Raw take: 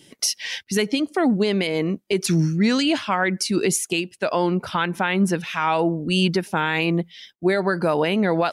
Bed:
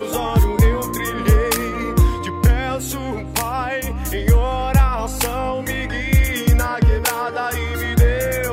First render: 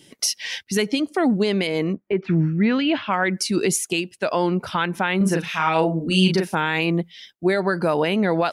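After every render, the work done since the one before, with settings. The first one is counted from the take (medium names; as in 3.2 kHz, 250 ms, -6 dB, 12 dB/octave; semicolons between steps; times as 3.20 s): 1.92–3.12 s: low-pass 1.9 kHz -> 3.7 kHz 24 dB/octave; 5.17–6.55 s: doubling 37 ms -3.5 dB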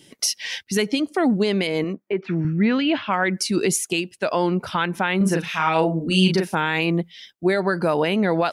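1.84–2.45 s: high-pass 260 Hz 6 dB/octave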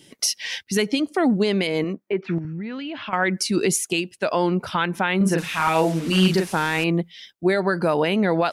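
2.38–3.13 s: compression 16:1, threshold -27 dBFS; 5.38–6.84 s: one-bit delta coder 64 kbps, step -30 dBFS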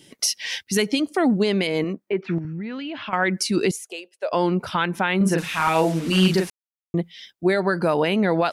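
0.47–1.23 s: treble shelf 5.6 kHz +4 dB; 3.71–4.33 s: ladder high-pass 460 Hz, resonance 60%; 6.50–6.94 s: mute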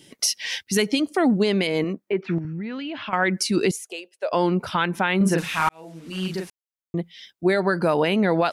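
5.69–7.55 s: fade in linear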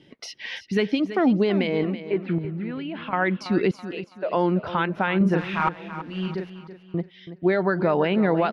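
distance through air 310 m; feedback delay 329 ms, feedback 37%, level -12.5 dB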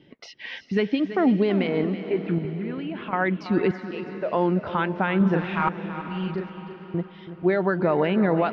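distance through air 170 m; echo that smears into a reverb 492 ms, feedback 48%, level -13.5 dB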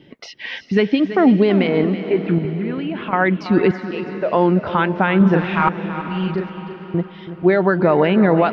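trim +7 dB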